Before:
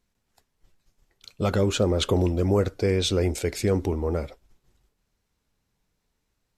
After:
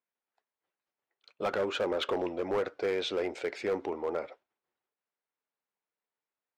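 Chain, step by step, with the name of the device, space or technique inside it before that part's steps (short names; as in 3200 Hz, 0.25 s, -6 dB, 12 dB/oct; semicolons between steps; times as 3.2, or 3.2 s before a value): walkie-talkie (BPF 530–2400 Hz; hard clip -24.5 dBFS, distortion -13 dB; gate -56 dBFS, range -11 dB)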